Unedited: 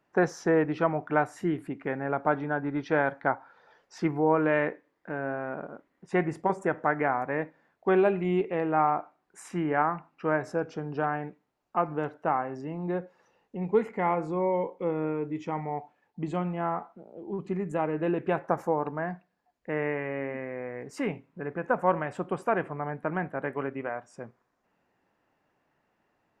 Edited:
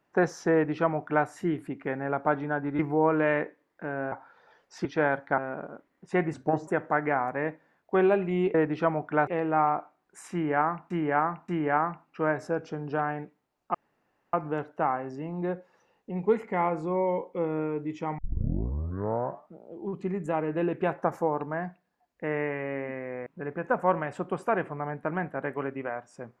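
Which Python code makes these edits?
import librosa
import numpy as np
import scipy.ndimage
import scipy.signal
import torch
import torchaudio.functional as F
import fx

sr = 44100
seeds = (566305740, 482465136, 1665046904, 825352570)

y = fx.edit(x, sr, fx.duplicate(start_s=0.53, length_s=0.73, to_s=8.48),
    fx.swap(start_s=2.79, length_s=0.53, other_s=4.05, other_length_s=1.33),
    fx.speed_span(start_s=6.34, length_s=0.27, speed=0.81),
    fx.repeat(start_s=9.53, length_s=0.58, count=3),
    fx.insert_room_tone(at_s=11.79, length_s=0.59),
    fx.tape_start(start_s=15.64, length_s=1.41),
    fx.cut(start_s=20.72, length_s=0.54), tone=tone)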